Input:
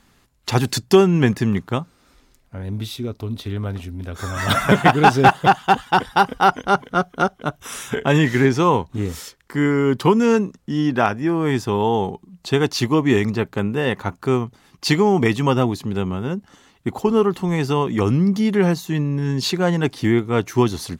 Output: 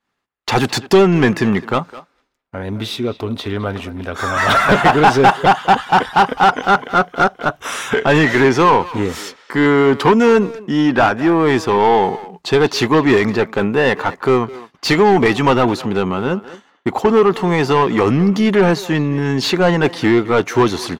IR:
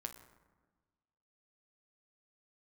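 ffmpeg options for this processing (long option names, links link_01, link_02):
-filter_complex "[0:a]agate=range=-33dB:threshold=-41dB:ratio=3:detection=peak,asplit=2[link_01][link_02];[link_02]highpass=frequency=720:poles=1,volume=21dB,asoftclip=type=tanh:threshold=-2dB[link_03];[link_01][link_03]amix=inputs=2:normalize=0,lowpass=frequency=1800:poles=1,volume=-6dB,asplit=2[link_04][link_05];[link_05]adelay=210,highpass=300,lowpass=3400,asoftclip=type=hard:threshold=-12dB,volume=-15dB[link_06];[link_04][link_06]amix=inputs=2:normalize=0"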